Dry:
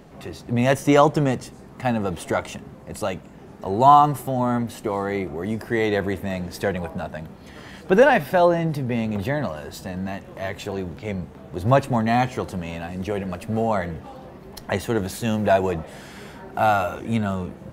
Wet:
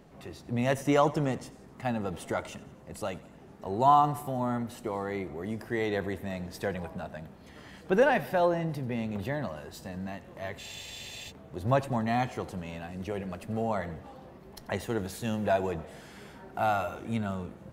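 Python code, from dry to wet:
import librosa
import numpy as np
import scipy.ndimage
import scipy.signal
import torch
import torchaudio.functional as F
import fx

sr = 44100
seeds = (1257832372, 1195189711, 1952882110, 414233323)

y = fx.echo_feedback(x, sr, ms=89, feedback_pct=55, wet_db=-19.0)
y = fx.spec_freeze(y, sr, seeds[0], at_s=10.6, hold_s=0.7)
y = y * librosa.db_to_amplitude(-8.5)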